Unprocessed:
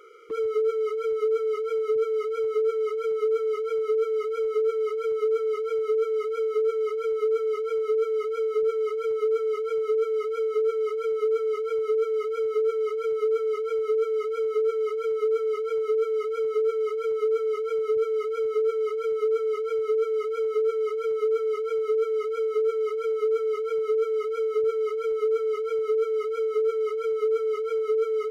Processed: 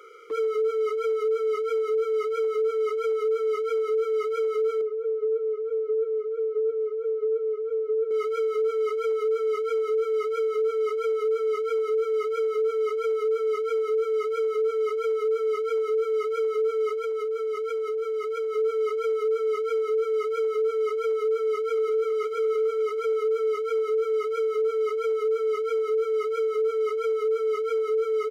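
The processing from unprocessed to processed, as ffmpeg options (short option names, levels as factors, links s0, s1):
-filter_complex "[0:a]asettb=1/sr,asplit=3[s0][s1][s2];[s0]atrim=end=4.814[s3];[s1]atrim=start=4.81:end=8.11,asetpts=PTS-STARTPTS,afade=t=in:d=0.004:c=qsin,afade=t=out:st=3.296:d=0.004:c=qsin,bandpass=f=500:t=q:w=3[s4];[s2]atrim=start=8.106[s5];[s3][s4]acrossfade=d=0.004:c1=hsin:c2=qsin[s6];[s6][s5]acrossfade=d=0.004:c1=qsin:c2=hsin,asettb=1/sr,asplit=3[s7][s8][s9];[s7]atrim=end=16.934[s10];[s8]atrim=start=16.93:end=18.55,asetpts=PTS-STARTPTS,afade=t=in:d=0.004:c=qsin,afade=t=out:st=1.616:d=0.004:c=qsin,acompressor=threshold=0.0447:ratio=6:attack=3.2:release=140:knee=1:detection=peak[s11];[s9]atrim=start=18.546[s12];[s10][s11]acrossfade=d=0.004:c1=hsin:c2=qsin[s13];[s13][s12]acrossfade=d=0.004:c1=qsin:c2=hsin,asplit=2[s14][s15];[s15]afade=t=in:st=21.18:d=0.01,afade=t=out:st=22.18:d=0.01,aecho=0:1:550|1100|1650|2200|2750|3300:0.266073|0.14634|0.0804869|0.0442678|0.0243473|0.013391[s16];[s14][s16]amix=inputs=2:normalize=0,highpass=410,bandreject=f=2800:w=15,alimiter=limit=0.0668:level=0:latency=1,volume=1.5"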